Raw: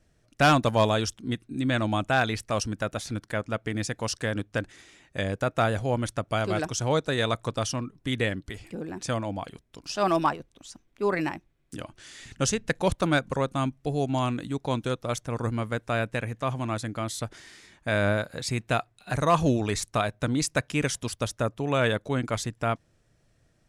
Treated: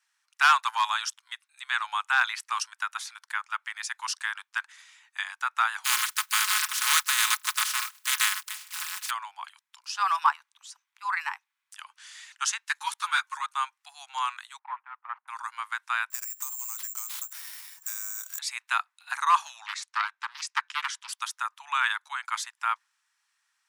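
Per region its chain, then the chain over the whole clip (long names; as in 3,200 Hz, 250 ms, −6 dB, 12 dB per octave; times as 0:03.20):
0:05.84–0:09.09: compressing power law on the bin magnitudes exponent 0.2 + high-pass filter 1,000 Hz 24 dB per octave + comb filter 4.7 ms, depth 62%
0:12.65–0:13.46: high-pass filter 700 Hz 24 dB per octave + high-shelf EQ 2,900 Hz +7 dB + string-ensemble chorus
0:14.59–0:15.28: running median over 25 samples + low-pass filter 1,900 Hz 24 dB per octave
0:16.10–0:18.39: bad sample-rate conversion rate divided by 6×, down none, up zero stuff + downward compressor 10 to 1, threshold −28 dBFS + log-companded quantiser 6 bits
0:19.66–0:21.09: high-pass filter 830 Hz + high-frequency loss of the air 82 metres + highs frequency-modulated by the lows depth 0.46 ms
whole clip: Butterworth high-pass 880 Hz 72 dB per octave; dynamic equaliser 1,300 Hz, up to +5 dB, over −41 dBFS, Q 1.2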